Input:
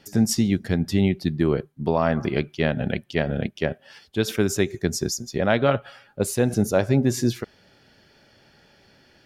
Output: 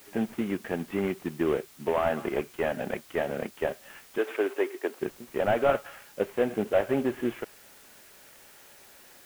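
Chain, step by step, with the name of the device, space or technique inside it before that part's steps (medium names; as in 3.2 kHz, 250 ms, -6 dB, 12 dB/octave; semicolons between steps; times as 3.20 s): army field radio (band-pass 360–2800 Hz; CVSD coder 16 kbps; white noise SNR 24 dB); 4.18–5.00 s: steep high-pass 280 Hz 36 dB/octave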